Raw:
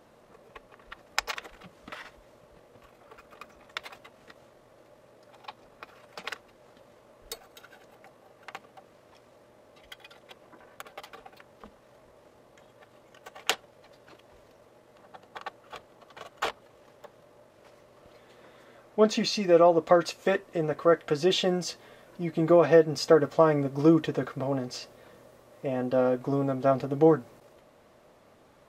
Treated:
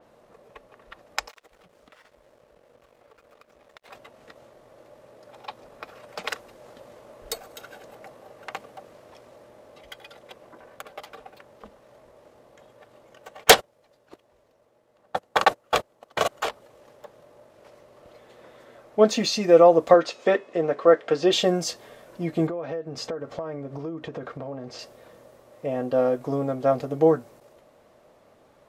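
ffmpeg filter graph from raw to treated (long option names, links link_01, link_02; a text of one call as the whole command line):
ffmpeg -i in.wav -filter_complex "[0:a]asettb=1/sr,asplit=3[link_01][link_02][link_03];[link_01]atrim=end=1.284[link_04];[link_02]atrim=start=1.28:end=3.88,asetpts=PTS-STARTPTS,afade=type=in:duration=0.004:curve=qsin,afade=type=out:start_time=2.596:duration=0.004:curve=qsin,equalizer=frequency=490:width_type=o:width=0.81:gain=4,acompressor=threshold=-51dB:ratio=3:attack=3.2:release=140:knee=1:detection=peak,aeval=exprs='sgn(val(0))*max(abs(val(0))-0.001,0)':channel_layout=same[link_05];[link_03]atrim=start=3.876[link_06];[link_04][link_05]acrossfade=duration=0.004:curve1=hsin:curve2=qsin[link_07];[link_07][link_06]acrossfade=duration=0.004:curve1=qsin:curve2=hsin,asettb=1/sr,asplit=3[link_08][link_09][link_10];[link_08]atrim=end=13.444[link_11];[link_09]atrim=start=13.44:end=16.28,asetpts=PTS-STARTPTS,afade=type=in:duration=0.004:curve=qsin,afade=type=out:start_time=2.836:duration=0.004:curve=qsin,agate=range=-29dB:threshold=-49dB:ratio=16:release=100:detection=peak,aeval=exprs='0.531*sin(PI/2*5.62*val(0)/0.531)':channel_layout=same[link_12];[link_10]atrim=start=16.276[link_13];[link_11][link_12]acrossfade=duration=0.004:curve1=hsin:curve2=qsin[link_14];[link_14][link_13]acrossfade=duration=0.004:curve1=qsin:curve2=hsin,asettb=1/sr,asplit=3[link_15][link_16][link_17];[link_15]atrim=end=19.944[link_18];[link_16]atrim=start=19.94:end=21.33,asetpts=PTS-STARTPTS,afade=type=in:duration=0.004:curve=qsin,afade=type=out:start_time=1.386:duration=0.004:curve=qsin,highpass=200,lowpass=4500,bandreject=frequency=425.4:width_type=h:width=4,bandreject=frequency=850.8:width_type=h:width=4,bandreject=frequency=1276.2:width_type=h:width=4,bandreject=frequency=1701.6:width_type=h:width=4,bandreject=frequency=2127:width_type=h:width=4,bandreject=frequency=2552.4:width_type=h:width=4,bandreject=frequency=2977.8:width_type=h:width=4,bandreject=frequency=3403.2:width_type=h:width=4,bandreject=frequency=3828.6:width_type=h:width=4,bandreject=frequency=4254:width_type=h:width=4,bandreject=frequency=4679.4:width_type=h:width=4,bandreject=frequency=5104.8:width_type=h:width=4,bandreject=frequency=5530.2:width_type=h:width=4,bandreject=frequency=5955.6:width_type=h:width=4,bandreject=frequency=6381:width_type=h:width=4,bandreject=frequency=6806.4:width_type=h:width=4,bandreject=frequency=7231.8:width_type=h:width=4,bandreject=frequency=7657.2:width_type=h:width=4,bandreject=frequency=8082.6:width_type=h:width=4,bandreject=frequency=8508:width_type=h:width=4,bandreject=frequency=8933.4:width_type=h:width=4,bandreject=frequency=9358.8:width_type=h:width=4,bandreject=frequency=9784.2:width_type=h:width=4,bandreject=frequency=10209.6:width_type=h:width=4,bandreject=frequency=10635:width_type=h:width=4,bandreject=frequency=11060.4:width_type=h:width=4,bandreject=frequency=11485.8:width_type=h:width=4,bandreject=frequency=11911.2:width_type=h:width=4[link_19];[link_17]atrim=start=21.326[link_20];[link_18][link_19]acrossfade=duration=0.004:curve1=hsin:curve2=qsin[link_21];[link_21][link_20]acrossfade=duration=0.004:curve1=qsin:curve2=hsin,asettb=1/sr,asplit=3[link_22][link_23][link_24];[link_22]atrim=end=22.474[link_25];[link_23]atrim=start=22.47:end=24.79,asetpts=PTS-STARTPTS,afade=type=in:duration=0.004:curve=qsin,afade=type=out:start_time=2.316:duration=0.004:curve=qsin,aemphasis=mode=reproduction:type=50fm,acompressor=threshold=-33dB:ratio=8:attack=3.2:release=140:knee=1:detection=peak[link_26];[link_24]atrim=start=24.786[link_27];[link_25][link_26]acrossfade=duration=0.004:curve1=hsin:curve2=qsin[link_28];[link_28][link_27]acrossfade=duration=0.004:curve1=qsin:curve2=hsin,equalizer=frequency=580:width_type=o:width=1.1:gain=4,dynaudnorm=framelen=490:gausssize=21:maxgain=11dB,adynamicequalizer=threshold=0.00891:dfrequency=5000:dqfactor=0.7:tfrequency=5000:tqfactor=0.7:attack=5:release=100:ratio=0.375:range=2.5:mode=boostabove:tftype=highshelf,volume=-1dB" out.wav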